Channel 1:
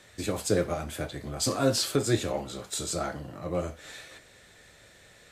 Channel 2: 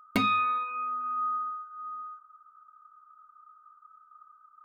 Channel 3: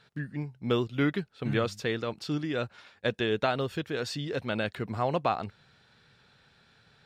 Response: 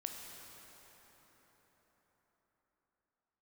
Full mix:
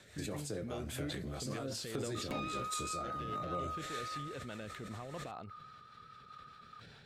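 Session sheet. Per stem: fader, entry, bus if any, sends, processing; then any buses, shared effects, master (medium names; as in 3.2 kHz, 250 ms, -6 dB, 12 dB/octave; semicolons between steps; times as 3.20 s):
-1.5 dB, 0.00 s, no bus, no send, compression 12:1, threshold -36 dBFS, peak gain reduction 18 dB
+2.0 dB, 2.15 s, bus A, no send, compression, threshold -34 dBFS, peak gain reduction 12 dB
-0.5 dB, 0.00 s, bus A, no send, compression 2.5:1, threshold -43 dBFS, peak gain reduction 14 dB
bus A: 0.0 dB, saturation -29 dBFS, distortion -18 dB; compression 1.5:1, threshold -43 dBFS, peak gain reduction 4 dB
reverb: none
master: rotary cabinet horn 5 Hz; decay stretcher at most 25 dB/s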